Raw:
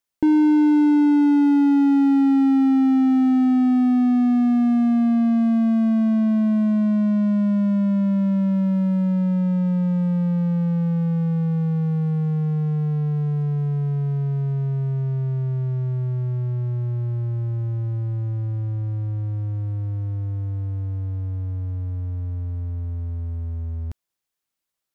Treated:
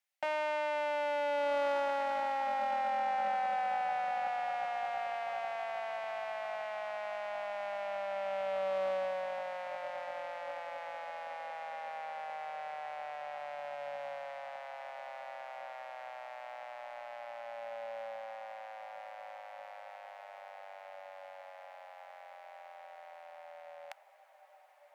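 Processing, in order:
speech leveller within 5 dB 2 s
harmonic generator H 2 −15 dB, 7 −45 dB, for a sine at −13 dBFS
Chebyshev high-pass with heavy ripple 550 Hz, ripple 9 dB
feedback delay with all-pass diffusion 1,446 ms, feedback 41%, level −11 dB
highs frequency-modulated by the lows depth 0.12 ms
level +5.5 dB

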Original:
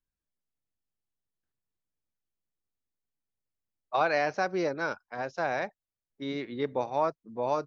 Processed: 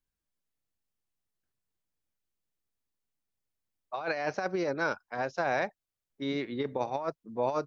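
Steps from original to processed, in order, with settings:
compressor whose output falls as the input rises −29 dBFS, ratio −0.5

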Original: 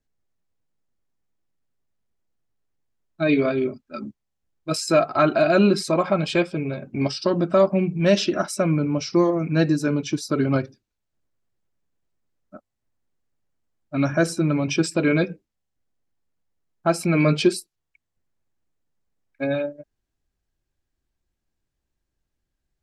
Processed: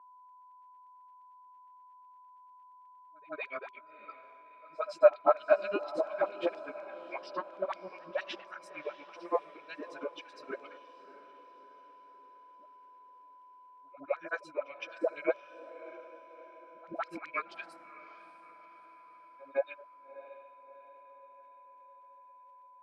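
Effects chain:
auto-filter high-pass saw down 4.2 Hz 440–5,700 Hz
surface crackle 95 per second −52 dBFS
all-pass dispersion highs, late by 126 ms, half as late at 430 Hz
granular cloud 110 ms, grains 8.6 per second, spray 11 ms, pitch spread up and down by 0 semitones
on a send: feedback delay with all-pass diffusion 643 ms, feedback 51%, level −15 dB
on the sum: steady tone 1,000 Hz −47 dBFS
three-way crossover with the lows and the highs turned down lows −24 dB, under 170 Hz, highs −22 dB, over 2,800 Hz
echo ahead of the sound 163 ms −24 dB
level −7 dB

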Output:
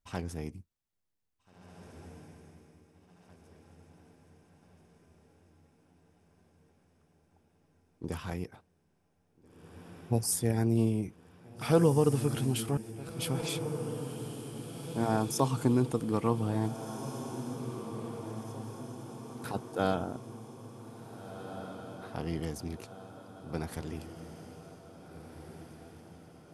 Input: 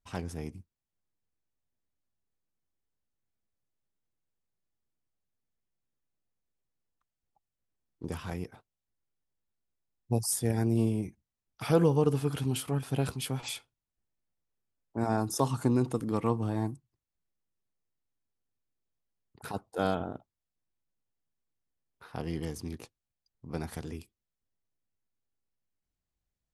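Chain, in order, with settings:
0:12.77–0:13.19: volume swells 592 ms
feedback delay with all-pass diffusion 1,810 ms, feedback 55%, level −10 dB

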